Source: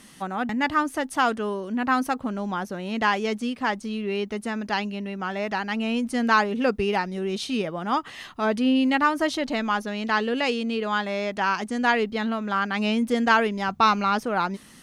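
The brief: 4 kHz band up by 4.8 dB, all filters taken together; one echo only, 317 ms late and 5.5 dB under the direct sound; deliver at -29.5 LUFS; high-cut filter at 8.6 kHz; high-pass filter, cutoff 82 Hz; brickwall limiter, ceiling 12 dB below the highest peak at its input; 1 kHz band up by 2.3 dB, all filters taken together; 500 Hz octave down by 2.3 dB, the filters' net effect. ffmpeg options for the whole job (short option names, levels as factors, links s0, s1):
-af "highpass=82,lowpass=8600,equalizer=f=500:t=o:g=-4,equalizer=f=1000:t=o:g=3.5,equalizer=f=4000:t=o:g=6.5,alimiter=limit=0.188:level=0:latency=1,aecho=1:1:317:0.531,volume=0.596"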